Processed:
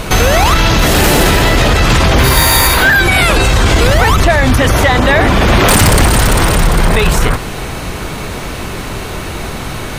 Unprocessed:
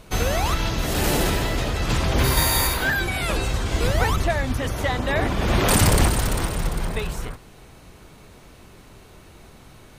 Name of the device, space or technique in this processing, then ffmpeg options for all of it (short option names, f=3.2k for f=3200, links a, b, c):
mastering chain: -af "equalizer=f=1.7k:t=o:w=2.2:g=3,acompressor=threshold=-25dB:ratio=2,asoftclip=type=tanh:threshold=-14.5dB,asoftclip=type=hard:threshold=-18.5dB,alimiter=level_in=25.5dB:limit=-1dB:release=50:level=0:latency=1,volume=-1dB"